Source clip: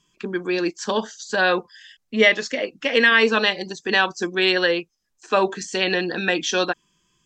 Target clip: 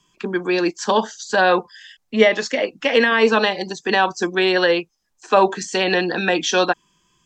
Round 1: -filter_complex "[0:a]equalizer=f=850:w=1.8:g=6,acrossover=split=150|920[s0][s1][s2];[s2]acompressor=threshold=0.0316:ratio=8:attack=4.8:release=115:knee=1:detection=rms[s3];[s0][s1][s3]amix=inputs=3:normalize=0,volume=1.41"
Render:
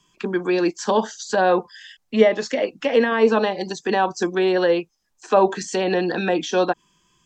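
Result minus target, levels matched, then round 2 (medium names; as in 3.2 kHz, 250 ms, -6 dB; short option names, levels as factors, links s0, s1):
compression: peak gain reduction +10 dB
-filter_complex "[0:a]equalizer=f=850:w=1.8:g=6,acrossover=split=150|920[s0][s1][s2];[s2]acompressor=threshold=0.119:ratio=8:attack=4.8:release=115:knee=1:detection=rms[s3];[s0][s1][s3]amix=inputs=3:normalize=0,volume=1.41"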